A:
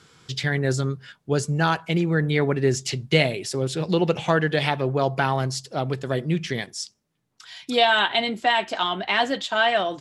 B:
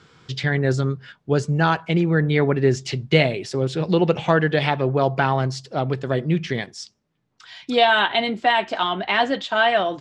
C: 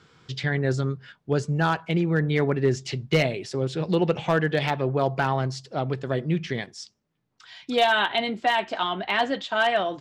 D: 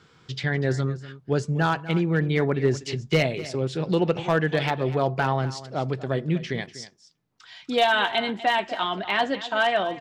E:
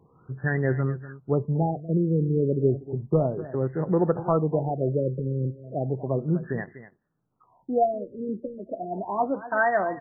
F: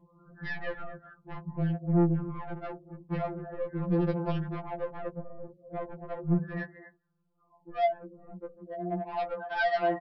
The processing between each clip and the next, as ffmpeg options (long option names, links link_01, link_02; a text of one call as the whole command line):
ffmpeg -i in.wav -af "lowpass=6600,highshelf=frequency=4100:gain=-7.5,volume=3dB" out.wav
ffmpeg -i in.wav -af "asoftclip=type=hard:threshold=-8dB,volume=-4dB" out.wav
ffmpeg -i in.wav -af "aecho=1:1:245:0.168" out.wav
ffmpeg -i in.wav -af "afftfilt=real='re*lt(b*sr/1024,550*pow(2100/550,0.5+0.5*sin(2*PI*0.33*pts/sr)))':imag='im*lt(b*sr/1024,550*pow(2100/550,0.5+0.5*sin(2*PI*0.33*pts/sr)))':win_size=1024:overlap=0.75" out.wav
ffmpeg -i in.wav -af "aresample=11025,asoftclip=type=tanh:threshold=-25.5dB,aresample=44100,afftfilt=real='re*2.83*eq(mod(b,8),0)':imag='im*2.83*eq(mod(b,8),0)':win_size=2048:overlap=0.75" out.wav